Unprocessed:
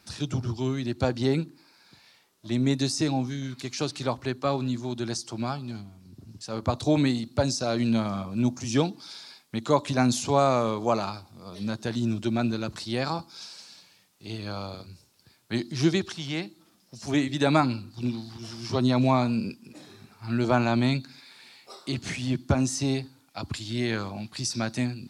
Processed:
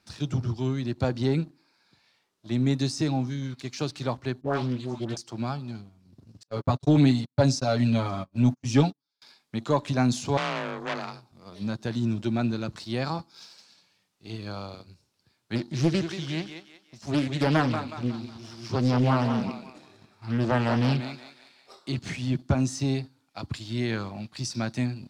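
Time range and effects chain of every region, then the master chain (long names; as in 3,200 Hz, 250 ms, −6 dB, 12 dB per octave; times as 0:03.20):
0:04.41–0:05.17: high-pass filter 48 Hz 24 dB per octave + all-pass dispersion highs, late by 119 ms, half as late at 1,000 Hz + highs frequency-modulated by the lows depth 0.44 ms
0:06.43–0:09.22: noise gate −33 dBFS, range −37 dB + comb filter 7.2 ms, depth 98%
0:10.37–0:11.32: high-pass filter 44 Hz + frequency shifter +27 Hz + saturating transformer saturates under 3,200 Hz
0:15.55–0:21.74: feedback echo with a high-pass in the loop 183 ms, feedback 45%, high-pass 340 Hz, level −7 dB + highs frequency-modulated by the lows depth 0.57 ms
whole clip: dynamic equaliser 140 Hz, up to +4 dB, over −38 dBFS, Q 1.2; leveller curve on the samples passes 1; high-shelf EQ 9,700 Hz −11.5 dB; level −5.5 dB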